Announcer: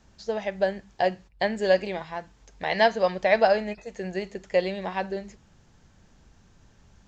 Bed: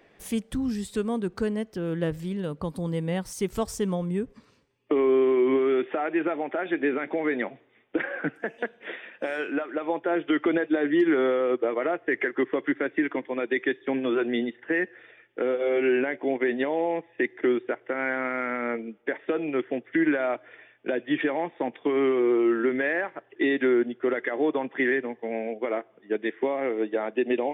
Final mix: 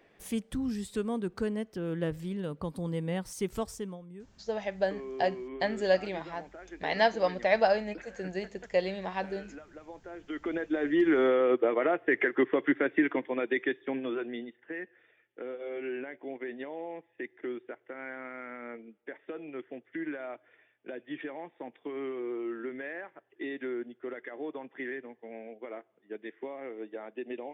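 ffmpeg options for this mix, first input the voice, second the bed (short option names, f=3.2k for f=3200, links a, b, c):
-filter_complex "[0:a]adelay=4200,volume=-4.5dB[a];[1:a]volume=14dB,afade=t=out:st=3.53:d=0.48:silence=0.188365,afade=t=in:st=10.2:d=1.19:silence=0.11885,afade=t=out:st=13.03:d=1.42:silence=0.223872[b];[a][b]amix=inputs=2:normalize=0"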